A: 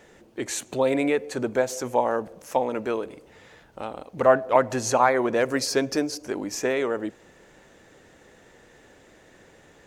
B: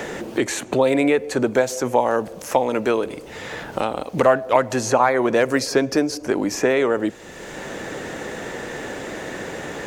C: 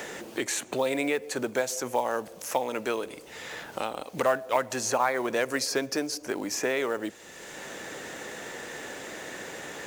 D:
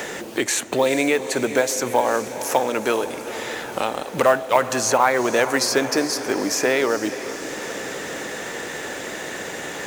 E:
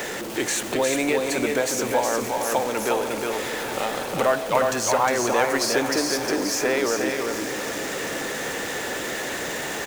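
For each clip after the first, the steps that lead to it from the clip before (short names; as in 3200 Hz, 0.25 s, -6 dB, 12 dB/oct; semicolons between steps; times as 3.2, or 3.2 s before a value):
three-band squash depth 70%; gain +5.5 dB
tilt +2 dB/oct; companded quantiser 6-bit; gain -8 dB
diffused feedback echo 0.45 s, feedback 66%, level -12 dB; gain +8 dB
zero-crossing step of -24.5 dBFS; echo 0.358 s -4 dB; gain -5.5 dB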